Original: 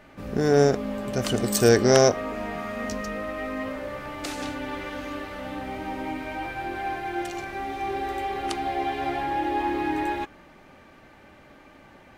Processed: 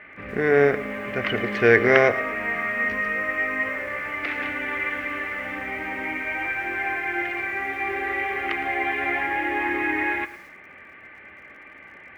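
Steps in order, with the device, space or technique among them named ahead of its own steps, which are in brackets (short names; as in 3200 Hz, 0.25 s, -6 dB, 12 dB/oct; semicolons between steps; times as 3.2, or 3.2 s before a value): guitar cabinet (speaker cabinet 97–3700 Hz, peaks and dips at 110 Hz +5 dB, 450 Hz +4 dB, 1100 Hz +7 dB, 2100 Hz +5 dB); graphic EQ 125/250/500/1000/2000/4000/8000 Hz -12/-6/-5/-10/+11/-11/-12 dB; lo-fi delay 0.112 s, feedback 35%, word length 8-bit, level -15 dB; gain +5.5 dB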